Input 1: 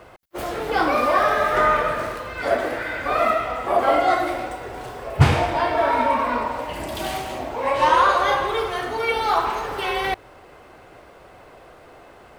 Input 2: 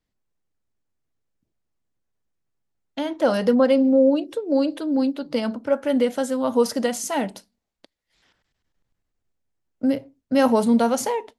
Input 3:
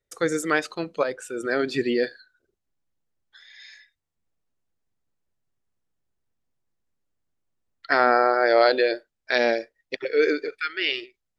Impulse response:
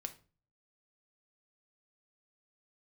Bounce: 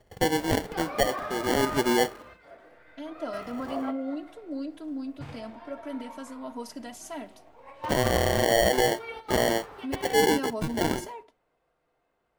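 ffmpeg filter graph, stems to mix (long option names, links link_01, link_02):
-filter_complex "[0:a]adynamicequalizer=threshold=0.01:dfrequency=4200:dqfactor=0.7:tfrequency=4200:tqfactor=0.7:attack=5:release=100:ratio=0.375:range=2:mode=cutabove:tftype=highshelf,volume=-18.5dB,asplit=2[link_01][link_02];[link_02]volume=-8.5dB[link_03];[1:a]aecho=1:1:3:0.92,volume=-20dB,asplit=2[link_04][link_05];[link_05]volume=-5dB[link_06];[2:a]lowpass=5200,acompressor=mode=upward:threshold=-46dB:ratio=2.5,acrusher=samples=35:mix=1:aa=0.000001,volume=0dB,asplit=2[link_07][link_08];[link_08]apad=whole_len=546131[link_09];[link_01][link_09]sidechaingate=range=-33dB:threshold=-57dB:ratio=16:detection=peak[link_10];[3:a]atrim=start_sample=2205[link_11];[link_03][link_06]amix=inputs=2:normalize=0[link_12];[link_12][link_11]afir=irnorm=-1:irlink=0[link_13];[link_10][link_04][link_07][link_13]amix=inputs=4:normalize=0,alimiter=limit=-13.5dB:level=0:latency=1:release=67"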